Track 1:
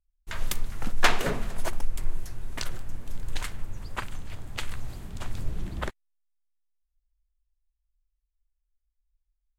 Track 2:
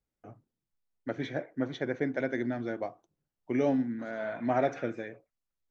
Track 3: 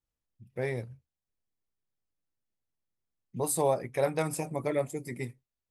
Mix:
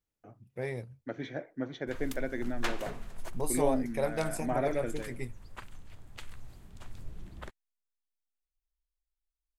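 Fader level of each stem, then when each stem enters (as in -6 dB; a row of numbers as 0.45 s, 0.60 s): -12.5 dB, -4.0 dB, -3.5 dB; 1.60 s, 0.00 s, 0.00 s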